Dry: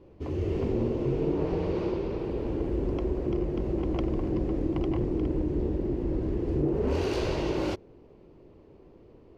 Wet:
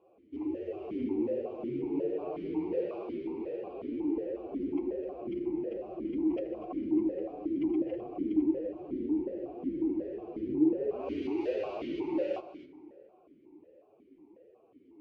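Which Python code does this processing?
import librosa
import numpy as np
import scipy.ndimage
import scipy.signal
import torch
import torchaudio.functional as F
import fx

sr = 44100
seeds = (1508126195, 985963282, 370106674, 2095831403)

y = fx.peak_eq(x, sr, hz=410.0, db=5.0, octaves=1.5)
y = fx.stretch_vocoder(y, sr, factor=1.6)
y = y + 10.0 ** (-13.5 / 20.0) * np.pad(y, (int(256 * sr / 1000.0), 0))[:len(y)]
y = fx.rev_plate(y, sr, seeds[0], rt60_s=3.1, hf_ratio=0.55, predelay_ms=0, drr_db=14.5)
y = fx.vowel_held(y, sr, hz=5.5)
y = F.gain(torch.from_numpy(y), 3.0).numpy()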